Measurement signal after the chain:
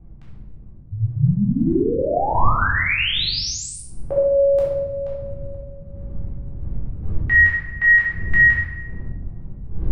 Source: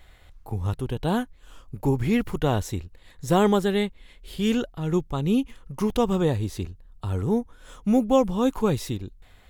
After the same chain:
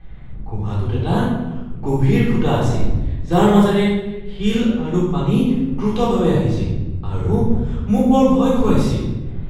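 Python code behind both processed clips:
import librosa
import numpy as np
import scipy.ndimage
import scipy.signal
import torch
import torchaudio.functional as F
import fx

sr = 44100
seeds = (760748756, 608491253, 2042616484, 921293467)

y = fx.dmg_wind(x, sr, seeds[0], corner_hz=89.0, level_db=-37.0)
y = fx.env_lowpass(y, sr, base_hz=2100.0, full_db=-17.0)
y = fx.room_shoebox(y, sr, seeds[1], volume_m3=550.0, walls='mixed', distance_m=3.7)
y = F.gain(torch.from_numpy(y), -3.0).numpy()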